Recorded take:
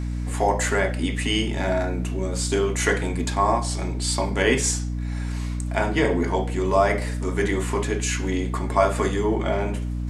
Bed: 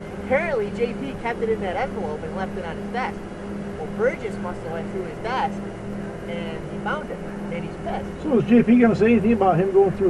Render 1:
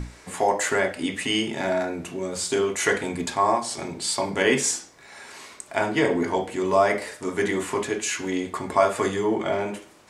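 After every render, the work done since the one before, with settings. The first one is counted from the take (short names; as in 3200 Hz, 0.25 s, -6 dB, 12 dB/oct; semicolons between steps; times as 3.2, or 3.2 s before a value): notches 60/120/180/240/300 Hz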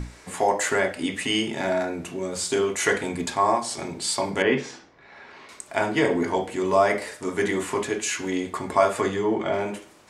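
4.42–5.49 air absorption 270 m; 9.01–9.54 air absorption 64 m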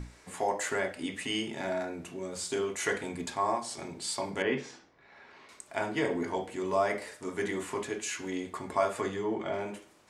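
gain -8.5 dB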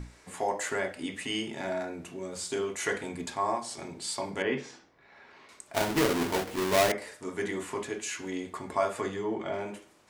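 5.74–6.92 half-waves squared off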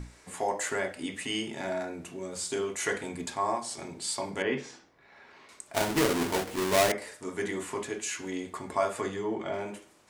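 bell 8800 Hz +3 dB 1.1 oct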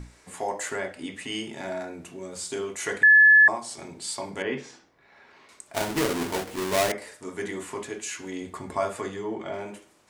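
0.76–1.32 high shelf 7600 Hz -6 dB; 3.03–3.48 bleep 1720 Hz -11 dBFS; 8.41–8.97 low shelf 200 Hz +7 dB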